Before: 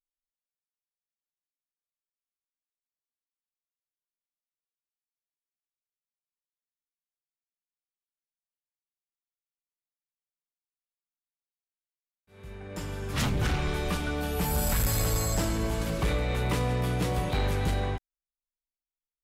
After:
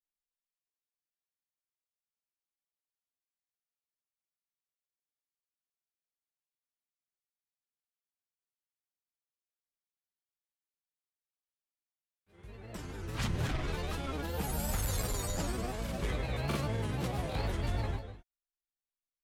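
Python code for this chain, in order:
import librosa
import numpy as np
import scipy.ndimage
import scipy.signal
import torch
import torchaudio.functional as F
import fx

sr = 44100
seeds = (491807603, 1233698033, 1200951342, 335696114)

y = fx.rev_gated(x, sr, seeds[0], gate_ms=260, shape='rising', drr_db=10.5)
y = fx.granulator(y, sr, seeds[1], grain_ms=100.0, per_s=20.0, spray_ms=23.0, spread_st=3)
y = y * librosa.db_to_amplitude(-5.5)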